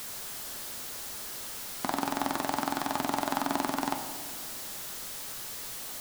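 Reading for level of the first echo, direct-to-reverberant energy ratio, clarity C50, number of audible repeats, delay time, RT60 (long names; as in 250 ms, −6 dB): no echo audible, 5.0 dB, 8.0 dB, no echo audible, no echo audible, 1.7 s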